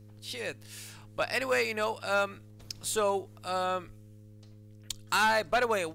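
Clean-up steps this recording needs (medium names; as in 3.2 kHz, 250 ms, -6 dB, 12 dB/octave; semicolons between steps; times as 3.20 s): de-hum 105.4 Hz, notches 5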